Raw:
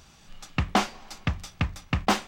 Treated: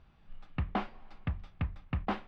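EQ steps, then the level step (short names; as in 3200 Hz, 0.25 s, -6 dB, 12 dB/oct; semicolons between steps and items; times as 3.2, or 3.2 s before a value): air absorption 420 m; low shelf 61 Hz +9.5 dB; -9.0 dB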